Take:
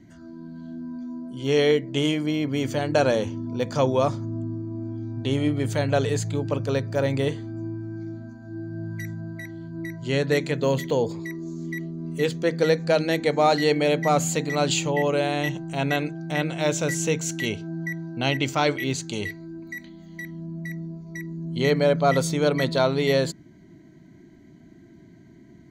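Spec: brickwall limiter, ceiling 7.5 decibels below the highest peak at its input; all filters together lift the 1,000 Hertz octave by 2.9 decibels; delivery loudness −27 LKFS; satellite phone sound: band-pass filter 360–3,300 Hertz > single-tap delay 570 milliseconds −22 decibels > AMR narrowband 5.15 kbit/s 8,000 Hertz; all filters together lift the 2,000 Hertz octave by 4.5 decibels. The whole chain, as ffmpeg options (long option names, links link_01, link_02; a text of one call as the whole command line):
ffmpeg -i in.wav -af "equalizer=frequency=1000:width_type=o:gain=3.5,equalizer=frequency=2000:width_type=o:gain=5,alimiter=limit=-12dB:level=0:latency=1,highpass=360,lowpass=3300,aecho=1:1:570:0.0794,volume=2dB" -ar 8000 -c:a libopencore_amrnb -b:a 5150 out.amr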